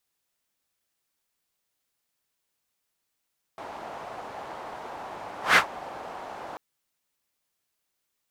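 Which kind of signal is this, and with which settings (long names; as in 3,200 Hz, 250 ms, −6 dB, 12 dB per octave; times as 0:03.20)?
pass-by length 2.99 s, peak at 0:01.98, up 0.16 s, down 0.11 s, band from 800 Hz, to 1,700 Hz, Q 2.1, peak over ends 23 dB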